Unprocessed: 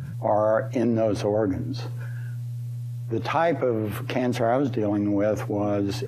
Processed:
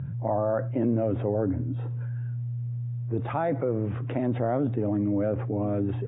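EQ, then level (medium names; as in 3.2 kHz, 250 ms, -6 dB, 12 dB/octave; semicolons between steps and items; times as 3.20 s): brick-wall FIR low-pass 3.8 kHz; distance through air 310 m; tilt EQ -2 dB/octave; -5.5 dB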